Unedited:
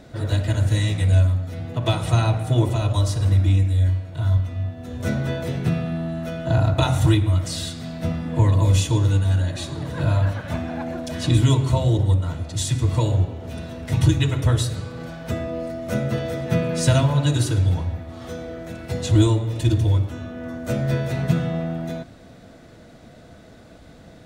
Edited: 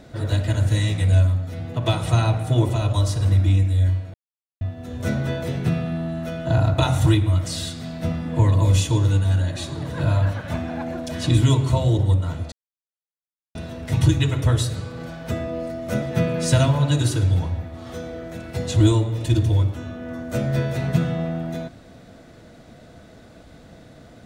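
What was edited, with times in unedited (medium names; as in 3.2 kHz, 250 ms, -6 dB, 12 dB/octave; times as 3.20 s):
4.14–4.61 s: mute
12.52–13.55 s: mute
16.02–16.37 s: delete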